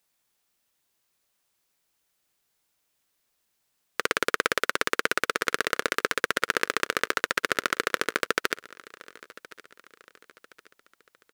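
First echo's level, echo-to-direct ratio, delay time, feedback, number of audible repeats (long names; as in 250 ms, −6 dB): −21.0 dB, −20.0 dB, 1,069 ms, 44%, 2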